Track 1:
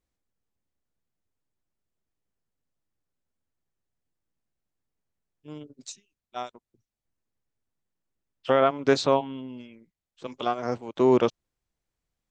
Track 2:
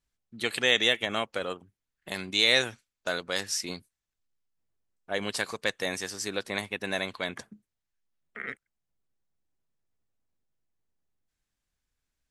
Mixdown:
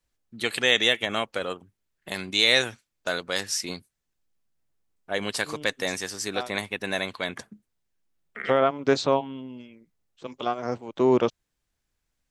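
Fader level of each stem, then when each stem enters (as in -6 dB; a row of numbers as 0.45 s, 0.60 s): -0.5 dB, +2.5 dB; 0.00 s, 0.00 s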